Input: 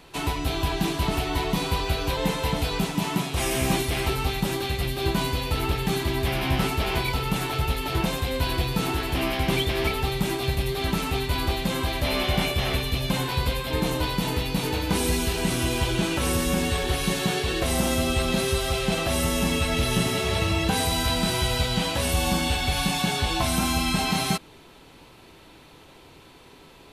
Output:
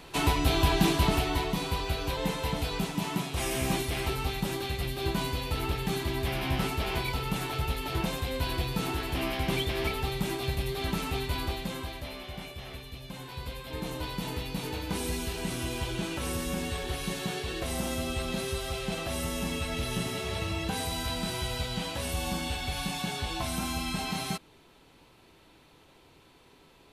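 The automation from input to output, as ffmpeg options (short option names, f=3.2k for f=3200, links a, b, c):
-af "volume=10dB,afade=t=out:st=0.89:d=0.65:silence=0.446684,afade=t=out:st=11.27:d=0.91:silence=0.266073,afade=t=in:st=13.12:d=1.12:silence=0.375837"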